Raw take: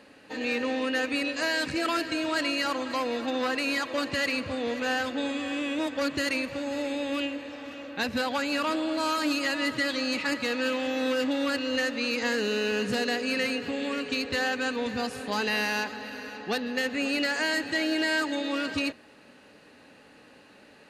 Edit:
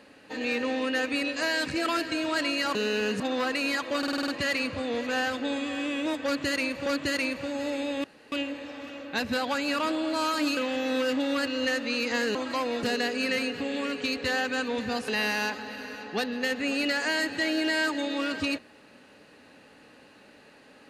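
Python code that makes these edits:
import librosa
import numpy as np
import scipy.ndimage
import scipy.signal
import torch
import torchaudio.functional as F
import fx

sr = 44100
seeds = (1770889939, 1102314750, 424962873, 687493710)

y = fx.edit(x, sr, fx.swap(start_s=2.75, length_s=0.48, other_s=12.46, other_length_s=0.45),
    fx.stutter(start_s=4.01, slice_s=0.05, count=7),
    fx.repeat(start_s=5.98, length_s=0.61, count=2),
    fx.insert_room_tone(at_s=7.16, length_s=0.28),
    fx.cut(start_s=9.41, length_s=1.27),
    fx.cut(start_s=15.16, length_s=0.26), tone=tone)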